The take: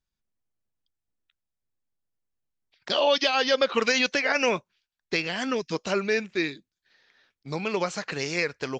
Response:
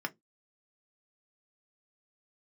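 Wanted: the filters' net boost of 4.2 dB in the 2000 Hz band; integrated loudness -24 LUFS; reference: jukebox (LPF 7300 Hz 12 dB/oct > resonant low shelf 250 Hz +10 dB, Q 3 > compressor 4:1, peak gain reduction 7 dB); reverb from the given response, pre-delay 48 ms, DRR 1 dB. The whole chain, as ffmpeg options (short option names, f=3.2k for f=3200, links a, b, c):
-filter_complex "[0:a]equalizer=f=2k:t=o:g=5.5,asplit=2[a][b];[1:a]atrim=start_sample=2205,adelay=48[c];[b][c]afir=irnorm=-1:irlink=0,volume=-4.5dB[d];[a][d]amix=inputs=2:normalize=0,lowpass=7.3k,lowshelf=f=250:t=q:w=3:g=10,acompressor=threshold=-19dB:ratio=4,volume=-1dB"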